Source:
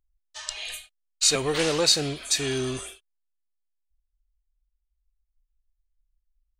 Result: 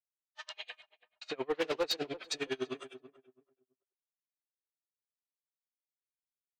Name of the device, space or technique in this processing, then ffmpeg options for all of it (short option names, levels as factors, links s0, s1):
helicopter radio: -filter_complex "[0:a]asettb=1/sr,asplit=3[s0][s1][s2];[s0]atrim=end=0.704[s3];[s1]atrim=start=0.7:end=1.62,asetpts=PTS-STARTPTS,afade=t=in:d=0.004:c=qsin,afade=t=out:st=0.916:d=0.004:c=qsin,aemphasis=mode=reproduction:type=75fm[s4];[s2]atrim=start=1.616[s5];[s3][s4]acrossfade=d=0.004:c1=hsin:c2=qsin[s6];[s6][s5]acrossfade=d=0.004:c1=qsin:c2=hsin,agate=range=0.0224:threshold=0.00251:ratio=3:detection=peak,highpass=320,lowpass=2900,aeval=exprs='val(0)*pow(10,-34*(0.5-0.5*cos(2*PI*9.9*n/s))/20)':c=same,asoftclip=type=hard:threshold=0.0562,asplit=2[s7][s8];[s8]adelay=331,lowpass=f=920:p=1,volume=0.2,asplit=2[s9][s10];[s10]adelay=331,lowpass=f=920:p=1,volume=0.25,asplit=2[s11][s12];[s12]adelay=331,lowpass=f=920:p=1,volume=0.25[s13];[s7][s9][s11][s13]amix=inputs=4:normalize=0"